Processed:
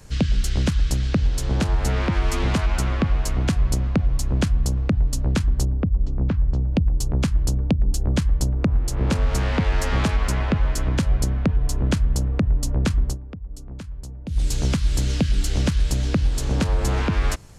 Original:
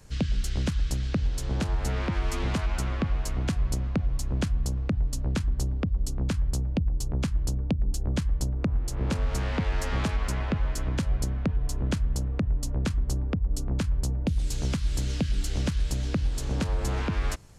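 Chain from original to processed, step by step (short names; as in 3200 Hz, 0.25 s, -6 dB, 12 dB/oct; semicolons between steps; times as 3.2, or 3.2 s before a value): 5.65–6.73 tape spacing loss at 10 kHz 38 dB; 13.05–14.4 dip -14.5 dB, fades 0.13 s; gain +6.5 dB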